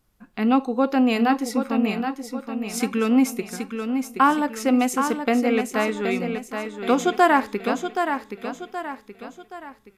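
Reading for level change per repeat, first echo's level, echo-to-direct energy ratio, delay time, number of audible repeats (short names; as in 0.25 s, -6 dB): -7.5 dB, -7.0 dB, -6.0 dB, 0.774 s, 4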